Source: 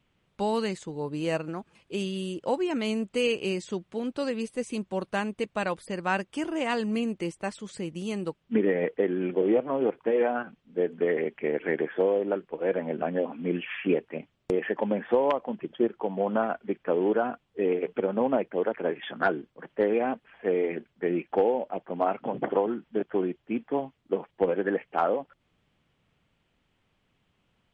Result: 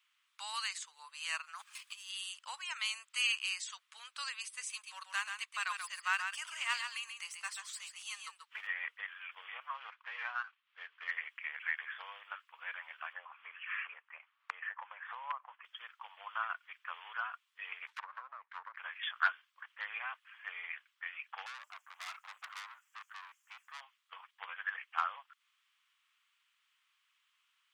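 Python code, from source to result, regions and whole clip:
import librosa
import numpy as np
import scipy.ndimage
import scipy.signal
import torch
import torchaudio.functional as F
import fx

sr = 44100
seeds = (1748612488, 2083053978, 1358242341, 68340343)

y = fx.chain(x, sr, fx.high_shelf(hz=4500.0, db=7.5),
    fx.leveller(passes=1),
    fx.over_compress(threshold_db=-35.0, ratio=-0.5), at=(1.55, 2.1))
y = fx.chain(y, sr, fx.halfwave_gain(db=-3.0),
    fx.echo_single(ms=135, db=-6.5), at=(4.7, 8.67))
y = fx.chain(y, sr, fx.median_filter(points=9),
    fx.lowpass(hz=4100.0, slope=24), at=(9.74, 11.11))
y = fx.chain(y, sr, fx.lowpass(hz=1400.0, slope=12),
    fx.band_squash(depth_pct=100), at=(13.13, 15.65))
y = fx.chain(y, sr, fx.lower_of_two(delay_ms=0.53),
    fx.env_lowpass_down(base_hz=550.0, full_db=-22.5), at=(17.87, 18.77))
y = fx.chain(y, sr, fx.high_shelf_res(hz=5200.0, db=10.5, q=3.0),
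    fx.tube_stage(drive_db=33.0, bias=0.4), at=(21.46, 23.81))
y = scipy.signal.sosfilt(scipy.signal.ellip(4, 1.0, 70, 1100.0, 'highpass', fs=sr, output='sos'), y)
y = fx.high_shelf(y, sr, hz=4300.0, db=7.5)
y = y * 10.0 ** (-1.5 / 20.0)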